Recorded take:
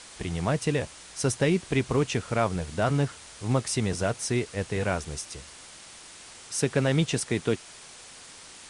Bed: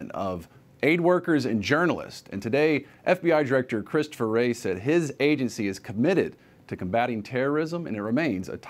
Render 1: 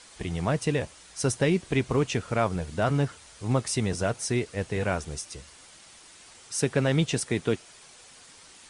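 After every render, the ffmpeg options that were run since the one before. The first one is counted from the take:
ffmpeg -i in.wav -af "afftdn=noise_reduction=6:noise_floor=-47" out.wav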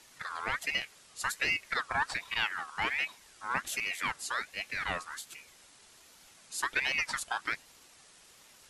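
ffmpeg -i in.wav -af "flanger=delay=1.3:depth=2.1:regen=51:speed=1.6:shape=triangular,aeval=exprs='val(0)*sin(2*PI*1800*n/s+1800*0.35/1.3*sin(2*PI*1.3*n/s))':channel_layout=same" out.wav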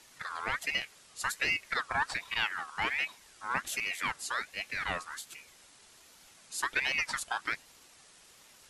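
ffmpeg -i in.wav -af anull out.wav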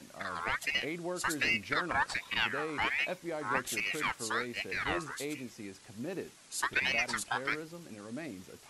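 ffmpeg -i in.wav -i bed.wav -filter_complex "[1:a]volume=-17dB[link_01];[0:a][link_01]amix=inputs=2:normalize=0" out.wav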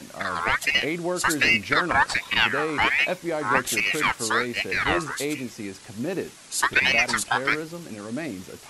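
ffmpeg -i in.wav -af "volume=10.5dB" out.wav

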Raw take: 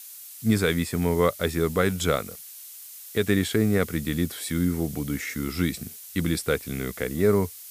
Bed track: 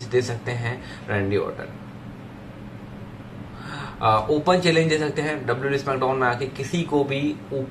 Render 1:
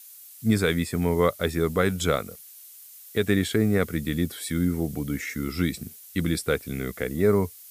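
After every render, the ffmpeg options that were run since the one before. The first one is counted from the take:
ffmpeg -i in.wav -af "afftdn=noise_reduction=6:noise_floor=-43" out.wav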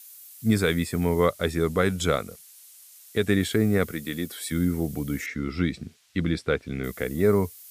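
ffmpeg -i in.wav -filter_complex "[0:a]asettb=1/sr,asplit=3[link_01][link_02][link_03];[link_01]atrim=end=1.254[link_04];[link_02]atrim=start=1.25:end=3.4,asetpts=PTS-STARTPTS,afade=type=in:duration=0.004:curve=qsin,afade=type=out:start_time=2.146:duration=0.004:curve=qsin,lowpass=12000[link_05];[link_03]atrim=start=3.396[link_06];[link_04][link_05]acrossfade=duration=0.004:curve1=hsin:curve2=qsin[link_07];[link_07][link_06]acrossfade=duration=0.004:curve1=qsin:curve2=hsin,asettb=1/sr,asplit=3[link_08][link_09][link_10];[link_08]atrim=end=3.914[link_11];[link_09]atrim=start=3.91:end=4.52,asetpts=PTS-STARTPTS,afade=type=in:duration=0.004:curve=qsin,afade=type=out:start_time=0.606:duration=0.004:curve=qsin,highpass=frequency=340:poles=1[link_12];[link_10]atrim=start=4.516[link_13];[link_11][link_12]acrossfade=duration=0.004:curve1=hsin:curve2=qsin[link_14];[link_14][link_13]acrossfade=duration=0.004:curve1=qsin:curve2=hsin,asettb=1/sr,asplit=3[link_15][link_16][link_17];[link_15]atrim=end=5.264[link_18];[link_16]atrim=start=5.26:end=6.84,asetpts=PTS-STARTPTS,afade=type=in:duration=0.004:curve=qsin,afade=type=out:start_time=1.576:duration=0.004:curve=qsin,lowpass=4000[link_19];[link_17]atrim=start=6.836[link_20];[link_18][link_19]acrossfade=duration=0.004:curve1=hsin:curve2=qsin[link_21];[link_21][link_20]acrossfade=duration=0.004:curve1=qsin:curve2=hsin" out.wav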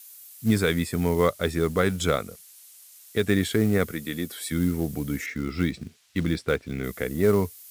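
ffmpeg -i in.wav -af "acrusher=bits=6:mode=log:mix=0:aa=0.000001" out.wav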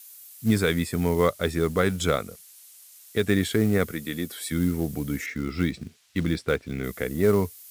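ffmpeg -i in.wav -af anull out.wav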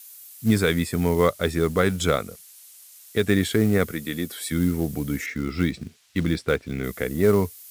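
ffmpeg -i in.wav -af "volume=2dB" out.wav

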